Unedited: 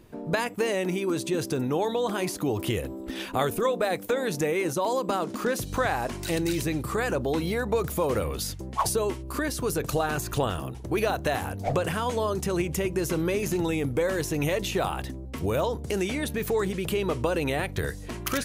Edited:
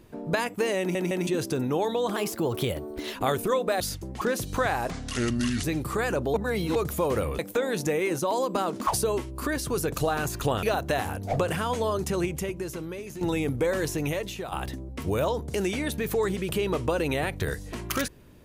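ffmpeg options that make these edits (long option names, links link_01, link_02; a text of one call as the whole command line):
ffmpeg -i in.wav -filter_complex "[0:a]asplit=17[link_01][link_02][link_03][link_04][link_05][link_06][link_07][link_08][link_09][link_10][link_11][link_12][link_13][link_14][link_15][link_16][link_17];[link_01]atrim=end=0.952[link_18];[link_02]atrim=start=0.788:end=0.952[link_19];[link_03]atrim=start=0.788:end=0.952[link_20];[link_04]atrim=start=1.268:end=2.164[link_21];[link_05]atrim=start=2.16:end=3.27,asetpts=PTS-STARTPTS,asetrate=49833,aresample=44100,atrim=end_sample=43319,asetpts=PTS-STARTPTS[link_22];[link_06]atrim=start=3.266:end=3.932[link_23];[link_07]atrim=start=8.378:end=8.792[link_24];[link_08]atrim=start=5.408:end=6.104[link_25];[link_09]atrim=start=6.1:end=6.63,asetpts=PTS-STARTPTS,asetrate=31752,aresample=44100,atrim=end_sample=32462,asetpts=PTS-STARTPTS[link_26];[link_10]atrim=start=6.626:end=7.332[link_27];[link_11]atrim=start=7.328:end=7.752,asetpts=PTS-STARTPTS,areverse[link_28];[link_12]atrim=start=7.748:end=8.382[link_29];[link_13]atrim=start=3.928:end=5.412[link_30];[link_14]atrim=start=8.788:end=10.552[link_31];[link_15]atrim=start=10.988:end=13.57,asetpts=PTS-STARTPTS,afade=type=out:start_time=1.542:duration=1.04:curve=qua:silence=0.266073[link_32];[link_16]atrim=start=13.57:end=14.88,asetpts=PTS-STARTPTS,afade=type=in:duration=0.004:curve=hsin:silence=0.266073,afade=type=out:start_time=0.68:duration=0.63:silence=0.251189[link_33];[link_17]atrim=start=14.88,asetpts=PTS-STARTPTS,afade=type=in:duration=0.004:curve=hsin:silence=0.251189[link_34];[link_18][link_19]acrossfade=duration=0.004:curve1=hsin:curve2=hsin[link_35];[link_35][link_20]acrossfade=duration=0.004:curve1=hsin:curve2=hsin[link_36];[link_36][link_21]acrossfade=duration=0.004:curve1=hsin:curve2=hsin[link_37];[link_37][link_22]acrossfade=duration=0.004:curve1=hsin:curve2=hsin[link_38];[link_38][link_23]acrossfade=duration=0.004:curve1=hsin:curve2=hsin[link_39];[link_39][link_24]acrossfade=duration=0.004:curve1=hsin:curve2=hsin[link_40];[link_40][link_25]acrossfade=duration=0.004:curve1=hsin:curve2=hsin[link_41];[link_41][link_26]acrossfade=duration=0.004:curve1=hsin:curve2=hsin[link_42];[link_42][link_27]acrossfade=duration=0.004:curve1=hsin:curve2=hsin[link_43];[link_43][link_28]acrossfade=duration=0.004:curve1=hsin:curve2=hsin[link_44];[link_44][link_29]acrossfade=duration=0.004:curve1=hsin:curve2=hsin[link_45];[link_45][link_30]acrossfade=duration=0.004:curve1=hsin:curve2=hsin[link_46];[link_46][link_31]acrossfade=duration=0.004:curve1=hsin:curve2=hsin[link_47];[link_32][link_33][link_34]concat=n=3:v=0:a=1[link_48];[link_47][link_48]acrossfade=duration=0.004:curve1=hsin:curve2=hsin" out.wav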